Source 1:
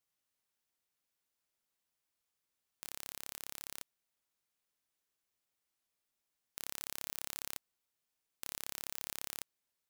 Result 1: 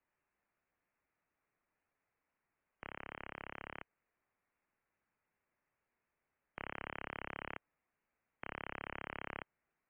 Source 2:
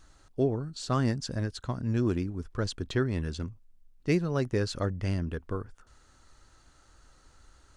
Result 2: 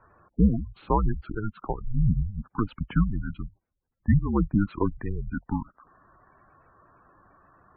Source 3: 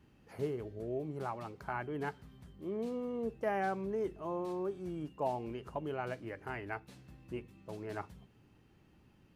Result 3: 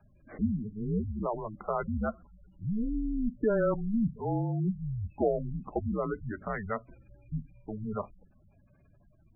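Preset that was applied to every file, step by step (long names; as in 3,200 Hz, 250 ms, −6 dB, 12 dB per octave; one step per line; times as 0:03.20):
single-sideband voice off tune −210 Hz 210–2,600 Hz
gate on every frequency bin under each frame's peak −15 dB strong
level +8 dB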